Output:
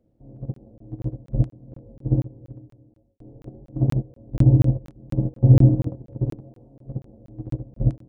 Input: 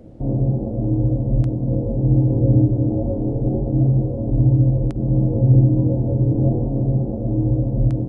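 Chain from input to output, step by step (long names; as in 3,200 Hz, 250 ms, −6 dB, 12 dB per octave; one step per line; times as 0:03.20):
0:01.93–0:03.19: fade out
0:06.40–0:06.86: spectral tilt +2 dB per octave
noise gate −14 dBFS, range −25 dB
regular buffer underruns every 0.24 s, samples 1,024, zero, from 0:00.54
level +1.5 dB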